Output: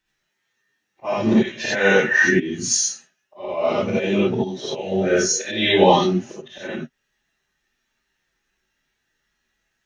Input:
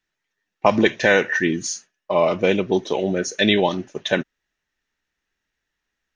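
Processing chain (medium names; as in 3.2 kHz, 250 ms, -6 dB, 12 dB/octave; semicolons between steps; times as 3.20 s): plain phase-vocoder stretch 1.6×; slow attack 380 ms; gated-style reverb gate 110 ms rising, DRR -7 dB; trim +1.5 dB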